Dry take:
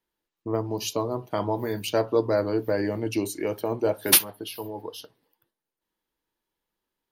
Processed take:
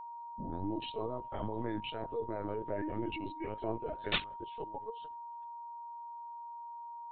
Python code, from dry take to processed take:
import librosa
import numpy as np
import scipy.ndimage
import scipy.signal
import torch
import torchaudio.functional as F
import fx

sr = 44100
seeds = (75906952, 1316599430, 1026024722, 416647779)

y = fx.tape_start_head(x, sr, length_s=0.72)
y = fx.level_steps(y, sr, step_db=17)
y = fx.chorus_voices(y, sr, voices=4, hz=0.51, base_ms=11, depth_ms=2.3, mix_pct=55)
y = fx.lpc_vocoder(y, sr, seeds[0], excitation='pitch_kept', order=16)
y = y + 10.0 ** (-42.0 / 20.0) * np.sin(2.0 * np.pi * 940.0 * np.arange(len(y)) / sr)
y = y * 10.0 ** (-1.0 / 20.0)